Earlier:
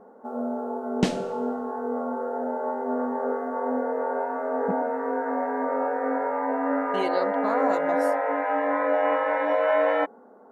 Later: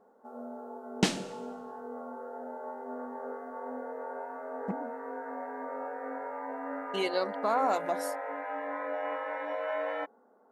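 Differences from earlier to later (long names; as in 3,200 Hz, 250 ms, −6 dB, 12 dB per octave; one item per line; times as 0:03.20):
first sound −11.0 dB
master: add spectral tilt +1.5 dB per octave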